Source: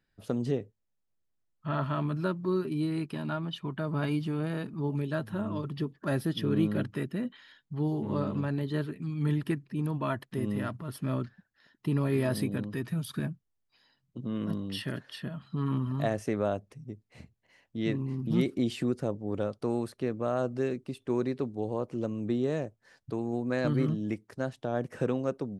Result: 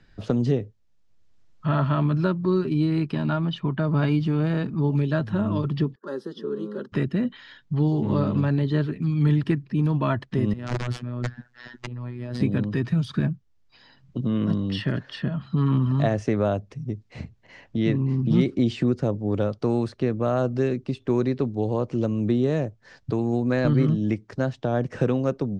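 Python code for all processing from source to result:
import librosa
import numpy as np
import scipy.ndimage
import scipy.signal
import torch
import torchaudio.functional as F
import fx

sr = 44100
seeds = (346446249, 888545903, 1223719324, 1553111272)

y = fx.chain(x, sr, fx.ladder_highpass(hz=290.0, resonance_pct=55),
    fx.fixed_phaser(hz=460.0, stages=8), at=(5.95, 6.92))
y = fx.chain(y, sr, fx.over_compress(threshold_db=-41.0, ratio=-1.0),
    fx.overflow_wrap(gain_db=28.5),
    fx.robotise(hz=122.0), at=(10.53, 12.41))
y = scipy.signal.sosfilt(scipy.signal.butter(4, 6600.0, 'lowpass', fs=sr, output='sos'), y)
y = fx.low_shelf(y, sr, hz=130.0, db=9.5)
y = fx.band_squash(y, sr, depth_pct=40)
y = y * 10.0 ** (5.5 / 20.0)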